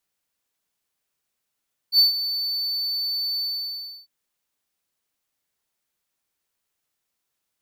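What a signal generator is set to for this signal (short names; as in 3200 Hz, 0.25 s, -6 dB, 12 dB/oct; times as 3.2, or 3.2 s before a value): ADSR triangle 4510 Hz, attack 69 ms, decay 0.133 s, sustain -12.5 dB, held 1.48 s, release 0.668 s -9 dBFS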